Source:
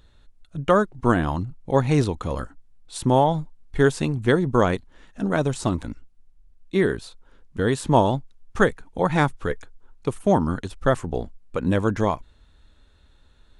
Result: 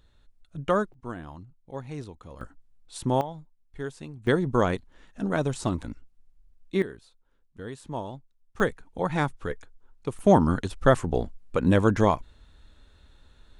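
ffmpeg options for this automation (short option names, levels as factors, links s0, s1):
-af "asetnsamples=n=441:p=0,asendcmd='0.94 volume volume -17.5dB;2.41 volume volume -6dB;3.21 volume volume -16.5dB;4.27 volume volume -4dB;6.82 volume volume -16.5dB;8.6 volume volume -6dB;10.19 volume volume 1dB',volume=0.501"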